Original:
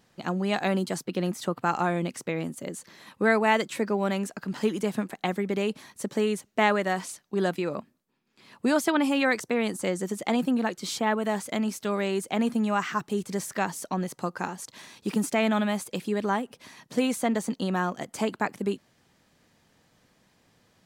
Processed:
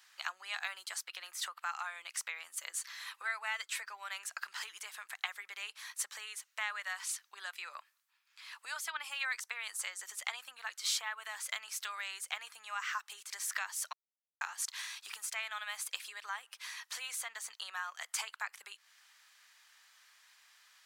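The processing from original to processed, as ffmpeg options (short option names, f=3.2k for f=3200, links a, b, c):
-filter_complex "[0:a]asettb=1/sr,asplit=3[a][b][c];[a]atrim=end=2.534[d];[b]atrim=start=2.53:end=3.97,asetpts=PTS-STARTPTS,afade=t=in:d=0.004:c=qsin,afade=t=out:st=1.436:d=0.004:c=qsin,aecho=1:1:6:0.32,atrim=end_sample=63504[e];[c]atrim=start=3.966[f];[d][e]acrossfade=d=0.004:c1=hsin:c2=qsin[g];[g][f]acrossfade=d=0.004:c1=qsin:c2=hsin,asplit=3[h][i][j];[h]atrim=end=13.93,asetpts=PTS-STARTPTS,afade=t=out:st=13.926:d=0.004:c=hsin[k];[i]atrim=start=13.93:end=14.41,asetpts=PTS-STARTPTS,volume=0[l];[j]atrim=start=14.41,asetpts=PTS-STARTPTS,afade=t=in:d=0.004:c=hsin[m];[k][l][m]concat=n=3:v=0:a=1,acompressor=threshold=-34dB:ratio=6,highpass=f=1.2k:w=0.5412,highpass=f=1.2k:w=1.3066,volume=5dB"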